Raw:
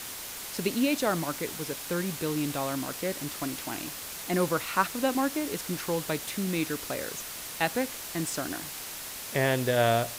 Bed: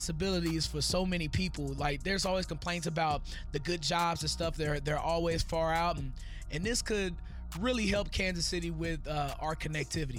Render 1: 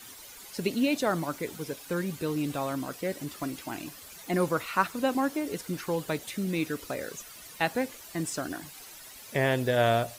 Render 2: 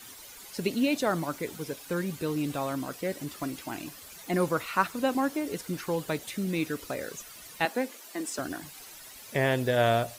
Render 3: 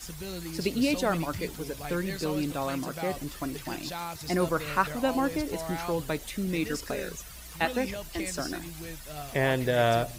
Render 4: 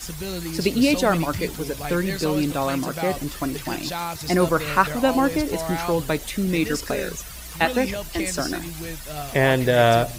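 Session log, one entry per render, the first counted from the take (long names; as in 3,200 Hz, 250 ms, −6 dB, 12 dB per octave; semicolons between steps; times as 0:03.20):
broadband denoise 12 dB, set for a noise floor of −40 dBFS
0:07.65–0:08.39: elliptic high-pass filter 210 Hz
mix in bed −6.5 dB
level +7.5 dB; brickwall limiter −3 dBFS, peak gain reduction 0.5 dB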